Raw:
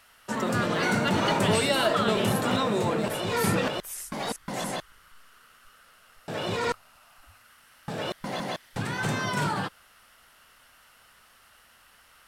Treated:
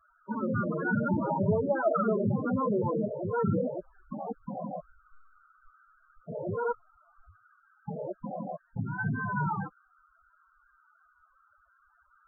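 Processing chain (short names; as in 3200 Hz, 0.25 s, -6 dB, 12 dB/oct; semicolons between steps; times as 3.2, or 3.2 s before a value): steep low-pass 1700 Hz 48 dB/oct; loudest bins only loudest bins 8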